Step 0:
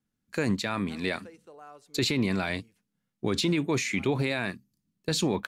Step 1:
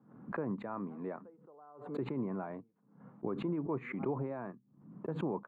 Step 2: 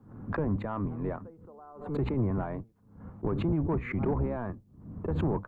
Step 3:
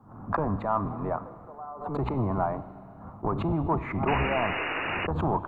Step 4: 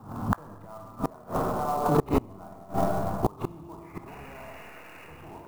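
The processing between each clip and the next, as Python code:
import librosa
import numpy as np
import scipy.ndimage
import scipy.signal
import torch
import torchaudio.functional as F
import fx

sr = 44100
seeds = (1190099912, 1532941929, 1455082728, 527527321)

y1 = scipy.signal.sosfilt(scipy.signal.ellip(3, 1.0, 60, [130.0, 1100.0], 'bandpass', fs=sr, output='sos'), x)
y1 = fx.tilt_eq(y1, sr, slope=1.5)
y1 = fx.pre_swell(y1, sr, db_per_s=88.0)
y1 = y1 * 10.0 ** (-6.0 / 20.0)
y2 = fx.octave_divider(y1, sr, octaves=1, level_db=-1.0)
y2 = fx.low_shelf(y2, sr, hz=100.0, db=5.5)
y2 = 10.0 ** (-25.5 / 20.0) * np.tanh(y2 / 10.0 ** (-25.5 / 20.0))
y2 = y2 * 10.0 ** (6.0 / 20.0)
y3 = fx.band_shelf(y2, sr, hz=910.0, db=11.0, octaves=1.3)
y3 = fx.rev_schroeder(y3, sr, rt60_s=2.5, comb_ms=32, drr_db=13.5)
y3 = fx.spec_paint(y3, sr, seeds[0], shape='noise', start_s=4.07, length_s=1.0, low_hz=250.0, high_hz=2900.0, level_db=-31.0)
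y4 = fx.rev_schroeder(y3, sr, rt60_s=1.9, comb_ms=26, drr_db=-1.5)
y4 = fx.gate_flip(y4, sr, shuts_db=-17.0, range_db=-29)
y4 = fx.clock_jitter(y4, sr, seeds[1], jitter_ms=0.02)
y4 = y4 * 10.0 ** (8.0 / 20.0)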